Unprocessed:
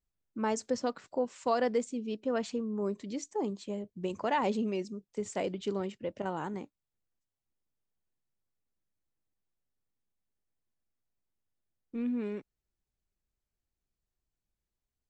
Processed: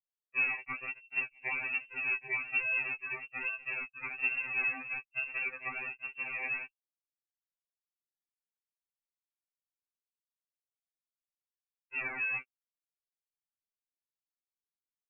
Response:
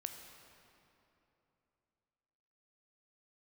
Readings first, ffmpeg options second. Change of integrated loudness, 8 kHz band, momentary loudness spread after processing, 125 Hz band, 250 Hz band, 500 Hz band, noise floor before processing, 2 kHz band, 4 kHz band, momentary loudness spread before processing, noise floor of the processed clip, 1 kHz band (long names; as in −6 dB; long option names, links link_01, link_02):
+0.5 dB, below −30 dB, 8 LU, −14.5 dB, −23.0 dB, −21.0 dB, below −85 dBFS, +14.0 dB, below −10 dB, 10 LU, below −85 dBFS, −10.5 dB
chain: -af "afftfilt=real='re*pow(10,7/40*sin(2*PI*(0.59*log(max(b,1)*sr/1024/100)/log(2)-(-1.6)*(pts-256)/sr)))':imag='im*pow(10,7/40*sin(2*PI*(0.59*log(max(b,1)*sr/1024/100)/log(2)-(-1.6)*(pts-256)/sr)))':win_size=1024:overlap=0.75,acompressor=threshold=-33dB:ratio=10,aresample=16000,acrusher=samples=22:mix=1:aa=0.000001:lfo=1:lforange=22:lforate=1.2,aresample=44100,lowpass=frequency=2400:width_type=q:width=0.5098,lowpass=frequency=2400:width_type=q:width=0.6013,lowpass=frequency=2400:width_type=q:width=0.9,lowpass=frequency=2400:width_type=q:width=2.563,afreqshift=-2800,lowshelf=frequency=150:gain=7,bandreject=frequency=1100:width=16,anlmdn=0.00158,equalizer=frequency=200:width_type=o:width=0.96:gain=11,aecho=1:1:2.6:0.35,afftfilt=real='re*2.45*eq(mod(b,6),0)':imag='im*2.45*eq(mod(b,6),0)':win_size=2048:overlap=0.75,volume=3.5dB"